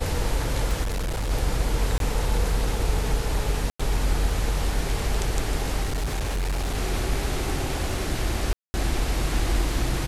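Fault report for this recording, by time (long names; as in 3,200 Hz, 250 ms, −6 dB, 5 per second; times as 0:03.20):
scratch tick 33 1/3 rpm
0:00.82–0:01.31: clipping −23.5 dBFS
0:01.98–0:02.00: drop-out 22 ms
0:03.70–0:03.79: drop-out 95 ms
0:05.83–0:06.78: clipping −22.5 dBFS
0:08.53–0:08.74: drop-out 210 ms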